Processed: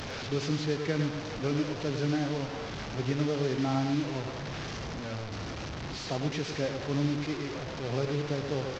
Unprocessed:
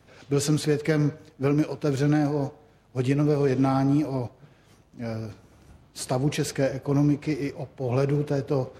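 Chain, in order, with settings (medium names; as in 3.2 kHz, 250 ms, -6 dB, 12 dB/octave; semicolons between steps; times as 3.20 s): one-bit delta coder 32 kbps, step -24.5 dBFS; on a send: delay 105 ms -7.5 dB; on the sum: trim -7.5 dB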